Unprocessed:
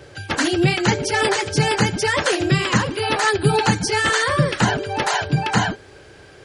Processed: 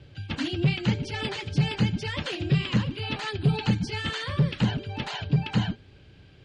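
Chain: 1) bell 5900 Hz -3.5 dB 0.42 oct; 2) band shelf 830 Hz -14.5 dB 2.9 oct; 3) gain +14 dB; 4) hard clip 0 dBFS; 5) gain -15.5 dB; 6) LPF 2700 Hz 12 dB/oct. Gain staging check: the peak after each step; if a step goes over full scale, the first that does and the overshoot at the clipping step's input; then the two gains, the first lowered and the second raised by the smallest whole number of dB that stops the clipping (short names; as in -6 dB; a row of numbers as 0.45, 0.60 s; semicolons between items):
-4.0, -5.0, +9.0, 0.0, -15.5, -15.5 dBFS; step 3, 9.0 dB; step 3 +5 dB, step 5 -6.5 dB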